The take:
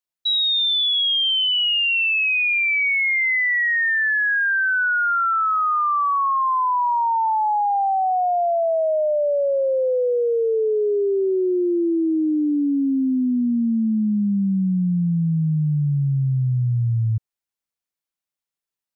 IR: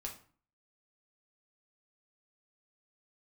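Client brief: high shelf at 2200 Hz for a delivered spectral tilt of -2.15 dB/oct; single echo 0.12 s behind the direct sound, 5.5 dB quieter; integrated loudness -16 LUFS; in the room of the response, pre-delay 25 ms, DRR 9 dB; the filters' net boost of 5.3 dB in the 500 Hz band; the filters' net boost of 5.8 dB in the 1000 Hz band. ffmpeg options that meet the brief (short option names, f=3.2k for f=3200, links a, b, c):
-filter_complex "[0:a]equalizer=f=500:t=o:g=5,equalizer=f=1k:t=o:g=4.5,highshelf=f=2.2k:g=6.5,aecho=1:1:120:0.531,asplit=2[a][b];[1:a]atrim=start_sample=2205,adelay=25[c];[b][c]afir=irnorm=-1:irlink=0,volume=-7dB[d];[a][d]amix=inputs=2:normalize=0,volume=-2.5dB"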